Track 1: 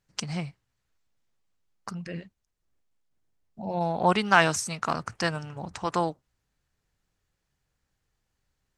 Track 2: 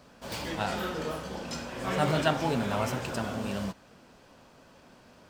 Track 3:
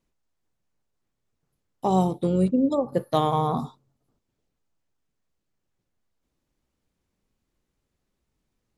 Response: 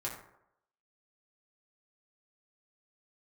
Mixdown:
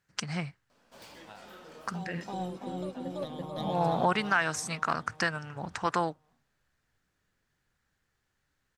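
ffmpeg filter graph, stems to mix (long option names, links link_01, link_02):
-filter_complex "[0:a]highpass=59,equalizer=frequency=1600:width_type=o:width=0.97:gain=8.5,volume=-1.5dB,asplit=2[link_01][link_02];[1:a]acontrast=84,lowshelf=frequency=180:gain=-11,acompressor=threshold=-31dB:ratio=2.5,adelay=700,volume=-17.5dB,asplit=2[link_03][link_04];[link_04]volume=-15dB[link_05];[2:a]equalizer=frequency=3700:width=1.5:gain=8,acontrast=56,aphaser=in_gain=1:out_gain=1:delay=4.1:decay=0.5:speed=0.28:type=sinusoidal,adelay=100,volume=-19dB,asplit=2[link_06][link_07];[link_07]volume=-3.5dB[link_08];[link_02]apad=whole_len=391378[link_09];[link_06][link_09]sidechaincompress=threshold=-38dB:ratio=8:attack=16:release=390[link_10];[link_03][link_10]amix=inputs=2:normalize=0,acompressor=threshold=-40dB:ratio=10,volume=0dB[link_11];[link_05][link_08]amix=inputs=2:normalize=0,aecho=0:1:334|668|1002|1336|1670|2004|2338|2672:1|0.55|0.303|0.166|0.0915|0.0503|0.0277|0.0152[link_12];[link_01][link_11][link_12]amix=inputs=3:normalize=0,alimiter=limit=-14dB:level=0:latency=1:release=368"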